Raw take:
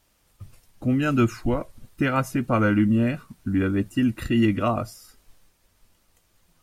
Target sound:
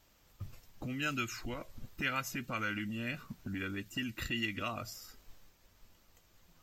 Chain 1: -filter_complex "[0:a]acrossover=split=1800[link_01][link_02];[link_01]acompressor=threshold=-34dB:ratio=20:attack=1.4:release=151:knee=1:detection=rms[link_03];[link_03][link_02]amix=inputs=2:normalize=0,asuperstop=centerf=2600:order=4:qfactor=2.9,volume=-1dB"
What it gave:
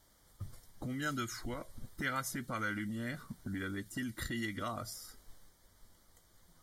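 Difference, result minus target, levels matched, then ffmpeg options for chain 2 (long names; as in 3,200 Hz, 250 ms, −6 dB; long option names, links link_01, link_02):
8,000 Hz band +4.0 dB
-filter_complex "[0:a]acrossover=split=1800[link_01][link_02];[link_01]acompressor=threshold=-34dB:ratio=20:attack=1.4:release=151:knee=1:detection=rms[link_03];[link_03][link_02]amix=inputs=2:normalize=0,asuperstop=centerf=9700:order=4:qfactor=2.9,volume=-1dB"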